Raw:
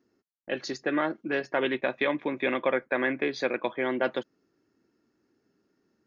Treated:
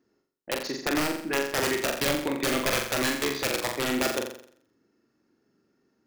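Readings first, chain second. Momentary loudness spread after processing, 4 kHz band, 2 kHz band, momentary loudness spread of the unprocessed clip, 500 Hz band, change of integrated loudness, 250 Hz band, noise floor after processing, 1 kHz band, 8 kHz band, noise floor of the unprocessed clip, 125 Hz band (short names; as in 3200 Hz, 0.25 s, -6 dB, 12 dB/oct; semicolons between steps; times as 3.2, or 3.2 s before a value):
6 LU, +9.5 dB, +1.0 dB, 7 LU, -1.0 dB, +2.0 dB, +1.5 dB, -74 dBFS, +1.5 dB, n/a, -76 dBFS, +8.0 dB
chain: wrapped overs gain 19 dB; flutter echo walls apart 7.4 m, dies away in 0.59 s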